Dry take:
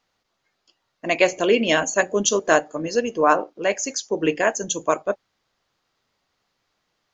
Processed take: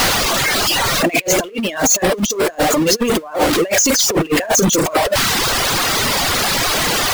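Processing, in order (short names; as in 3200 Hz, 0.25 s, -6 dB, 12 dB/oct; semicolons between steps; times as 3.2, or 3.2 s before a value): zero-crossing step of -18 dBFS; negative-ratio compressor -21 dBFS, ratio -0.5; reverb removal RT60 1.1 s; gain +7.5 dB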